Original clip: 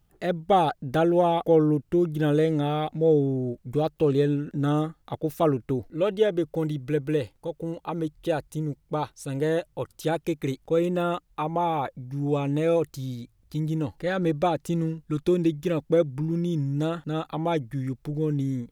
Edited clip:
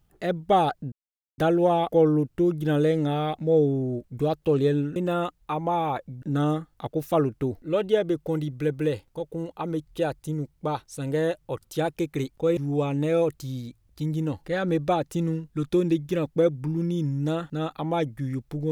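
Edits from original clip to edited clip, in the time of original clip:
0.92 s: insert silence 0.46 s
10.85–12.11 s: move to 4.50 s

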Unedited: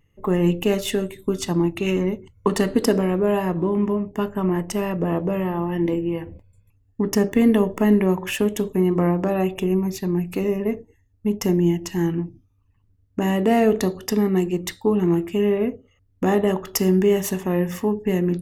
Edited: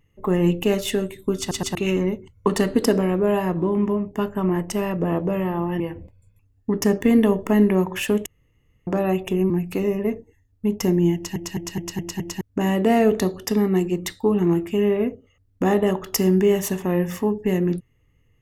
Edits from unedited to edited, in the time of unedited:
1.39 s: stutter in place 0.12 s, 3 plays
5.80–6.11 s: delete
8.57–9.18 s: room tone
9.81–10.11 s: delete
11.76 s: stutter in place 0.21 s, 6 plays

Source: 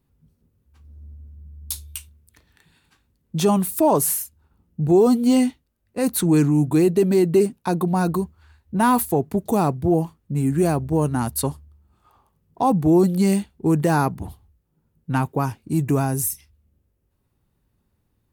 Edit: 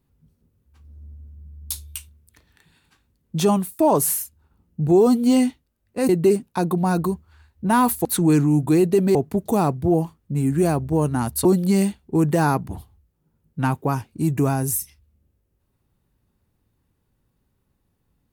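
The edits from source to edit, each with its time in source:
3.53–3.79 s: fade out
6.09–7.19 s: move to 9.15 s
11.45–12.96 s: delete

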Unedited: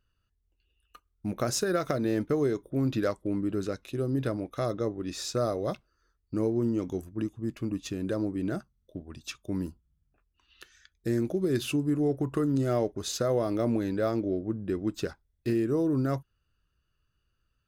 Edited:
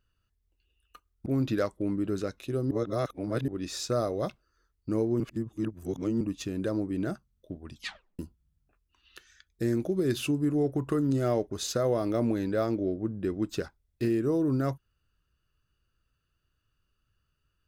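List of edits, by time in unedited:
1.26–2.71 s: delete
4.16–4.93 s: reverse
6.65–7.66 s: reverse
9.18 s: tape stop 0.46 s

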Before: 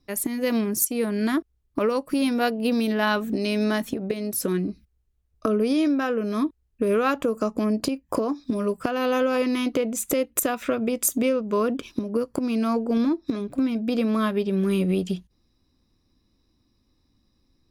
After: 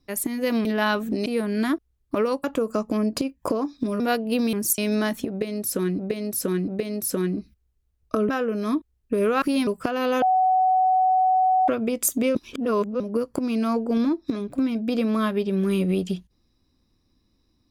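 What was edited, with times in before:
0.65–0.90 s: swap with 2.86–3.47 s
2.08–2.33 s: swap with 7.11–8.67 s
3.99–4.68 s: loop, 3 plays
5.60–5.98 s: delete
9.22–10.68 s: bleep 748 Hz -16 dBFS
11.35–12.00 s: reverse

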